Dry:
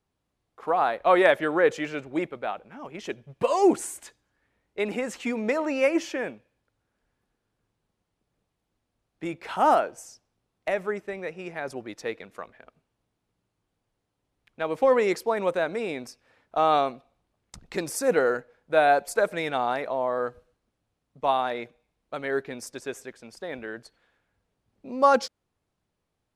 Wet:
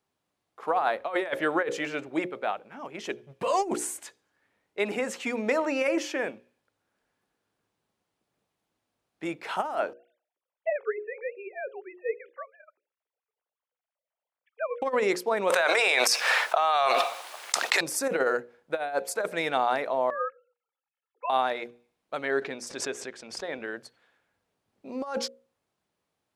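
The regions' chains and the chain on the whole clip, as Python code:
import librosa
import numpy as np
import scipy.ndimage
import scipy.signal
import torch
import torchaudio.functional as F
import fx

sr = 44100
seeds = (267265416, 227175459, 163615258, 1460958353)

y = fx.chain(x, sr, fx.sine_speech(),
    fx.air_absorb(metres=65.0), at=(9.93, 14.82))
y = fx.chain(y, sr, fx.bessel_highpass(hz=910.0, order=4),
    fx.env_flatten(amount_pct=100), at=(15.5, 17.81))
y = fx.chain(y, sr, fx.sine_speech(),
    fx.highpass(hz=930.0, slope=12),
    fx.comb(ms=2.3, depth=0.83), at=(20.1, 21.3))
y = fx.chain(y, sr, fx.lowpass(hz=7600.0, slope=12),
    fx.pre_swell(db_per_s=83.0), at=(22.23, 23.65))
y = fx.highpass(y, sr, hz=270.0, slope=6)
y = fx.hum_notches(y, sr, base_hz=60, count=9)
y = fx.over_compress(y, sr, threshold_db=-24.0, ratio=-0.5)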